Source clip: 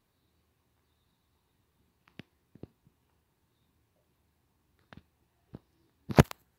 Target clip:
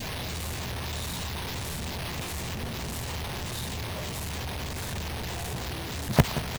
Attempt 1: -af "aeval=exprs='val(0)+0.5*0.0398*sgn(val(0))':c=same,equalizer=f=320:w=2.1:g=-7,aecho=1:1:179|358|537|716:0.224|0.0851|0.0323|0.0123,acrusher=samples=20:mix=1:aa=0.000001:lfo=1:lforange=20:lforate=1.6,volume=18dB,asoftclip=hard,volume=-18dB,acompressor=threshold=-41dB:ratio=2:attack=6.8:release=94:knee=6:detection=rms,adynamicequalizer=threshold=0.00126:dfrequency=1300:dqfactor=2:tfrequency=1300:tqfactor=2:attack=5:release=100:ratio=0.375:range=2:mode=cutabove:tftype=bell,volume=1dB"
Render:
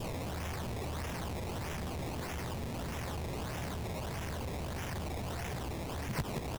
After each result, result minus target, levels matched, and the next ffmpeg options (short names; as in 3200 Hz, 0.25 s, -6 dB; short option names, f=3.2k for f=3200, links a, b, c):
compressor: peak gain reduction +11.5 dB; overloaded stage: distortion +11 dB; decimation with a swept rate: distortion +6 dB
-af "aeval=exprs='val(0)+0.5*0.0398*sgn(val(0))':c=same,equalizer=f=320:w=2.1:g=-7,aecho=1:1:179|358|537|716:0.224|0.0851|0.0323|0.0123,acrusher=samples=20:mix=1:aa=0.000001:lfo=1:lforange=20:lforate=1.6,volume=18dB,asoftclip=hard,volume=-18dB,adynamicequalizer=threshold=0.00126:dfrequency=1300:dqfactor=2:tfrequency=1300:tqfactor=2:attack=5:release=100:ratio=0.375:range=2:mode=cutabove:tftype=bell,volume=1dB"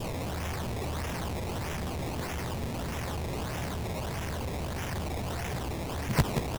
overloaded stage: distortion +11 dB; decimation with a swept rate: distortion +6 dB
-af "aeval=exprs='val(0)+0.5*0.0398*sgn(val(0))':c=same,equalizer=f=320:w=2.1:g=-7,aecho=1:1:179|358|537|716:0.224|0.0851|0.0323|0.0123,acrusher=samples=20:mix=1:aa=0.000001:lfo=1:lforange=20:lforate=1.6,volume=9.5dB,asoftclip=hard,volume=-9.5dB,adynamicequalizer=threshold=0.00126:dfrequency=1300:dqfactor=2:tfrequency=1300:tqfactor=2:attack=5:release=100:ratio=0.375:range=2:mode=cutabove:tftype=bell,volume=1dB"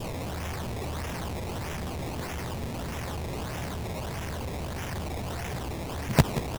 decimation with a swept rate: distortion +6 dB
-af "aeval=exprs='val(0)+0.5*0.0398*sgn(val(0))':c=same,equalizer=f=320:w=2.1:g=-7,aecho=1:1:179|358|537|716:0.224|0.0851|0.0323|0.0123,acrusher=samples=4:mix=1:aa=0.000001:lfo=1:lforange=4:lforate=1.6,volume=9.5dB,asoftclip=hard,volume=-9.5dB,adynamicequalizer=threshold=0.00126:dfrequency=1300:dqfactor=2:tfrequency=1300:tqfactor=2:attack=5:release=100:ratio=0.375:range=2:mode=cutabove:tftype=bell,volume=1dB"